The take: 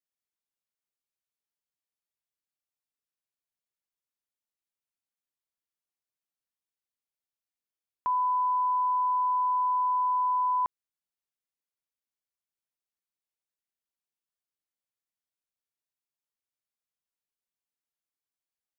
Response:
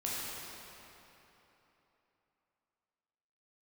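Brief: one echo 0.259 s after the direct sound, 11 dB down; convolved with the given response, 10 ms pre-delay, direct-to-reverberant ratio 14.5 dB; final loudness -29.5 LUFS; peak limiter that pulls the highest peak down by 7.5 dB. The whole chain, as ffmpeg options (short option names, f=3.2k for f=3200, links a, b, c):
-filter_complex "[0:a]alimiter=level_in=6.5dB:limit=-24dB:level=0:latency=1,volume=-6.5dB,aecho=1:1:259:0.282,asplit=2[a][b];[1:a]atrim=start_sample=2205,adelay=10[c];[b][c]afir=irnorm=-1:irlink=0,volume=-19.5dB[d];[a][d]amix=inputs=2:normalize=0,volume=1dB"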